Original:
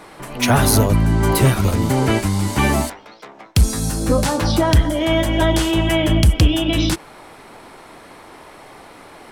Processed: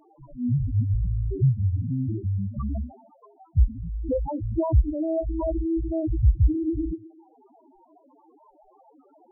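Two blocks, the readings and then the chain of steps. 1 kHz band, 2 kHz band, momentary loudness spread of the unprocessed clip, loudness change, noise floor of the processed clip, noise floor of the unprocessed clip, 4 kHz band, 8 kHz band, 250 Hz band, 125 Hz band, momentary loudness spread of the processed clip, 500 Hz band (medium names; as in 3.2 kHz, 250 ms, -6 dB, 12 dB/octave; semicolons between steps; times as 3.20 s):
-17.5 dB, under -40 dB, 7 LU, -9.0 dB, -59 dBFS, -42 dBFS, under -40 dB, under -40 dB, -9.5 dB, -6.5 dB, 9 LU, -10.5 dB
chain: tape echo 129 ms, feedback 42%, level -16 dB, low-pass 4.5 kHz; loudest bins only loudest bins 2; trim -3.5 dB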